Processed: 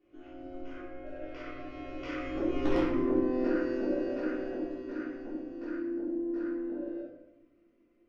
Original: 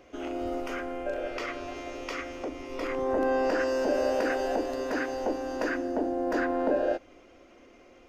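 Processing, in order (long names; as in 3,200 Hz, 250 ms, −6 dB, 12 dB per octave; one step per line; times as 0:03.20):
source passing by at 0:02.75, 9 m/s, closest 1.5 metres
thirty-one-band graphic EQ 125 Hz +5 dB, 200 Hz +5 dB, 315 Hz +12 dB, 800 Hz −9 dB
downward compressor 8 to 1, threshold −36 dBFS, peak gain reduction 12.5 dB
wrap-around overflow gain 29 dB
high-frequency loss of the air 160 metres
rectangular room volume 300 cubic metres, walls mixed, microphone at 3.4 metres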